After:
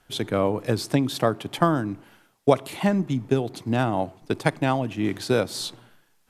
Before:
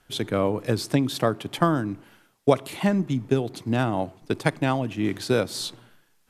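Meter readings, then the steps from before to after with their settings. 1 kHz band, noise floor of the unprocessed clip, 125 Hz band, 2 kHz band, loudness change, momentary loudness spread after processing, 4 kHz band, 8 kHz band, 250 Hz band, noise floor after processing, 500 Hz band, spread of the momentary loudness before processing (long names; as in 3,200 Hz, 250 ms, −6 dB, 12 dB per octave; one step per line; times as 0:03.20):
+1.5 dB, −64 dBFS, 0.0 dB, 0.0 dB, +0.5 dB, 6 LU, 0.0 dB, 0.0 dB, 0.0 dB, −64 dBFS, +1.0 dB, 7 LU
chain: parametric band 780 Hz +2.5 dB 0.77 octaves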